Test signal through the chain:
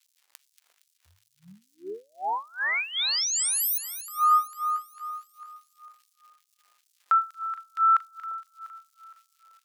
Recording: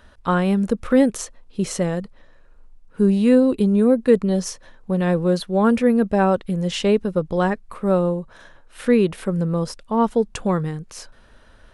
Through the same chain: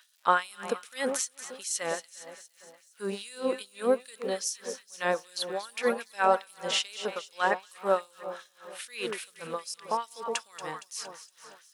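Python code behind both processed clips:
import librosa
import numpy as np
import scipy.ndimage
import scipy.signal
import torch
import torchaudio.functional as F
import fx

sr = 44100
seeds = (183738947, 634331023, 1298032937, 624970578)

y = fx.dmg_crackle(x, sr, seeds[0], per_s=250.0, level_db=-49.0)
y = fx.echo_alternate(y, sr, ms=116, hz=980.0, feedback_pct=77, wet_db=-9.5)
y = fx.filter_lfo_highpass(y, sr, shape='sine', hz=2.5, low_hz=620.0, high_hz=6200.0, q=0.79)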